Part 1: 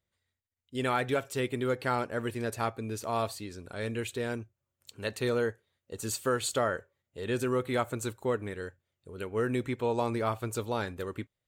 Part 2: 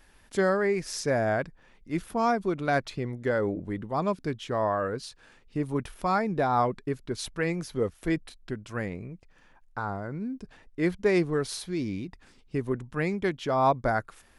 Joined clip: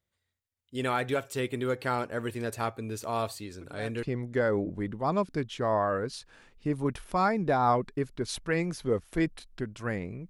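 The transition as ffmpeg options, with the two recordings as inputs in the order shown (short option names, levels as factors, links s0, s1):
-filter_complex "[1:a]asplit=2[s0][s1];[0:a]apad=whole_dur=10.29,atrim=end=10.29,atrim=end=4.032[s2];[s1]atrim=start=2.928:end=9.19[s3];[s0]atrim=start=2.51:end=2.93,asetpts=PTS-STARTPTS,volume=0.126,afade=t=in:d=0.004:c=hsin,afade=t=out:st=0.416:d=0.004:c=hsin,adelay=159201S[s4];[s2][s3]acrossfade=d=0.004:c1=hsin:c2=hsin[s5];[s5][s4]amix=inputs=2:normalize=0"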